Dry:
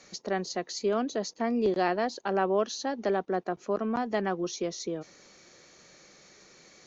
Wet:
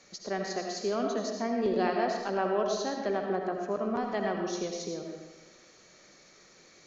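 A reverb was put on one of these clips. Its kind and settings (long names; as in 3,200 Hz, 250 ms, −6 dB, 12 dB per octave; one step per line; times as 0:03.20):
comb and all-pass reverb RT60 1.1 s, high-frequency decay 0.75×, pre-delay 40 ms, DRR 1.5 dB
level −3.5 dB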